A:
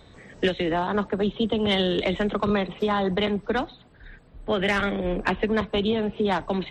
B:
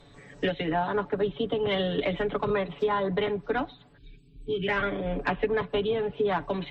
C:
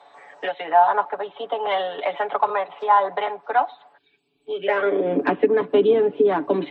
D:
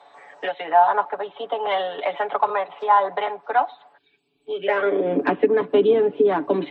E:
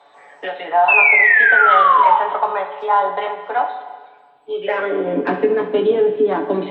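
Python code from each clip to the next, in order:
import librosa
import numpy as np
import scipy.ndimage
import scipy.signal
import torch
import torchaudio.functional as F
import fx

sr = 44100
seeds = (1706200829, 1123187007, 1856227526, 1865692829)

y1 = fx.env_lowpass_down(x, sr, base_hz=2700.0, full_db=-20.0)
y1 = fx.spec_box(y1, sr, start_s=3.98, length_s=0.69, low_hz=440.0, high_hz=2200.0, gain_db=-27)
y1 = y1 + 0.77 * np.pad(y1, (int(7.0 * sr / 1000.0), 0))[:len(y1)]
y1 = y1 * librosa.db_to_amplitude(-4.5)
y2 = fx.high_shelf(y1, sr, hz=3100.0, db=-11.5)
y2 = fx.filter_sweep_highpass(y2, sr, from_hz=790.0, to_hz=300.0, start_s=4.41, end_s=5.14, q=3.5)
y2 = fx.tremolo_shape(y2, sr, shape='triangle', hz=1.4, depth_pct=30)
y2 = y2 * librosa.db_to_amplitude(6.5)
y3 = y2
y4 = fx.spec_paint(y3, sr, seeds[0], shape='fall', start_s=0.88, length_s=1.29, low_hz=860.0, high_hz=2700.0, level_db=-13.0)
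y4 = fx.room_early_taps(y4, sr, ms=(21, 68), db=(-6.5, -12.5))
y4 = fx.rev_schroeder(y4, sr, rt60_s=1.6, comb_ms=33, drr_db=8.5)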